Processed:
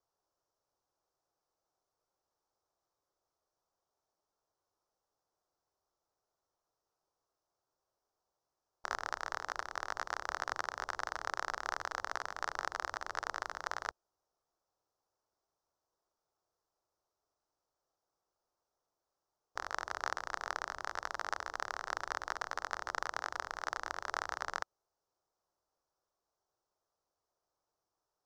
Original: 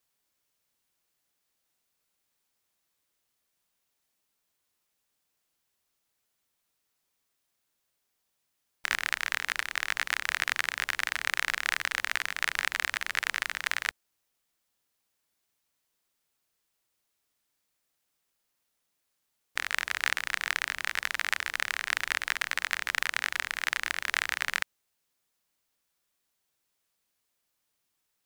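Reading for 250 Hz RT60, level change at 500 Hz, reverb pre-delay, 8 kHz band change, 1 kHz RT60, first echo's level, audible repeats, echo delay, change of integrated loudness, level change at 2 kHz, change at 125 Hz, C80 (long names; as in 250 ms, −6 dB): no reverb audible, +3.0 dB, no reverb audible, −11.5 dB, no reverb audible, no echo audible, no echo audible, no echo audible, −10.0 dB, −12.5 dB, can't be measured, no reverb audible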